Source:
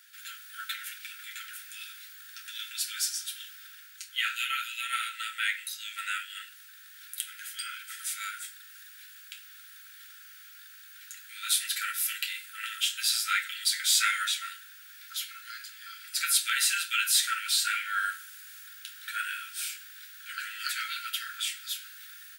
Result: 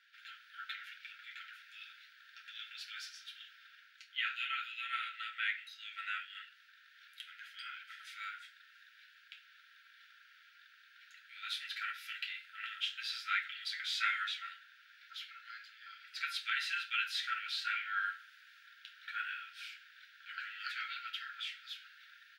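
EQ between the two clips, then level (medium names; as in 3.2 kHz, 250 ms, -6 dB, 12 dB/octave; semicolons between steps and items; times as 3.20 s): high-pass 1.3 kHz; distance through air 290 m; -2.0 dB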